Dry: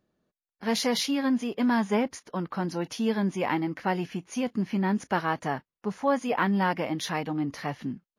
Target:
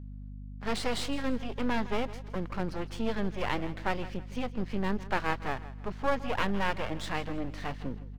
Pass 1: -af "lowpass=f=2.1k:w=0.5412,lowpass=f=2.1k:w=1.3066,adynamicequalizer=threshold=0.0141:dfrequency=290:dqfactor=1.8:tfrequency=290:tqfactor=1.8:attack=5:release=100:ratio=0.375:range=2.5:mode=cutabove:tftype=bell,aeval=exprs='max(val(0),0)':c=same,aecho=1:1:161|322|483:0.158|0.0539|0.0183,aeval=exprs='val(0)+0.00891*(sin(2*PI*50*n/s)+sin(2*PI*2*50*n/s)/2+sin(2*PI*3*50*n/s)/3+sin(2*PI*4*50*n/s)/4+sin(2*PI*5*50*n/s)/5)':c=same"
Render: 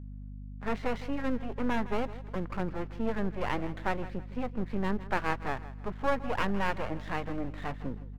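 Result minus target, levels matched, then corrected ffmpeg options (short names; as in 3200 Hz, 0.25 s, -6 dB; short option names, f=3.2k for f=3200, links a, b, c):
4000 Hz band -6.5 dB
-af "lowpass=f=4.6k:w=0.5412,lowpass=f=4.6k:w=1.3066,adynamicequalizer=threshold=0.0141:dfrequency=290:dqfactor=1.8:tfrequency=290:tqfactor=1.8:attack=5:release=100:ratio=0.375:range=2.5:mode=cutabove:tftype=bell,aeval=exprs='max(val(0),0)':c=same,aecho=1:1:161|322|483:0.158|0.0539|0.0183,aeval=exprs='val(0)+0.00891*(sin(2*PI*50*n/s)+sin(2*PI*2*50*n/s)/2+sin(2*PI*3*50*n/s)/3+sin(2*PI*4*50*n/s)/4+sin(2*PI*5*50*n/s)/5)':c=same"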